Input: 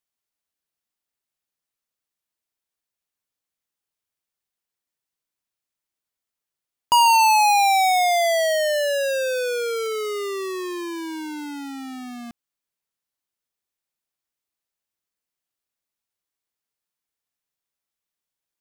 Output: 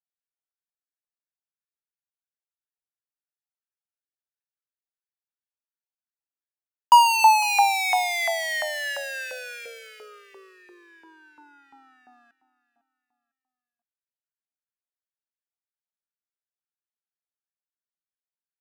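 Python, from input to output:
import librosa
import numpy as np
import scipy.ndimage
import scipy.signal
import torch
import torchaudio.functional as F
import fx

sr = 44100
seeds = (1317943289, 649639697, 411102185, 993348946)

y = fx.wiener(x, sr, points=41)
y = fx.echo_feedback(y, sr, ms=503, feedback_pct=34, wet_db=-17)
y = fx.filter_lfo_highpass(y, sr, shape='saw_up', hz=2.9, low_hz=880.0, high_hz=2000.0, q=2.9)
y = y * 10.0 ** (-3.5 / 20.0)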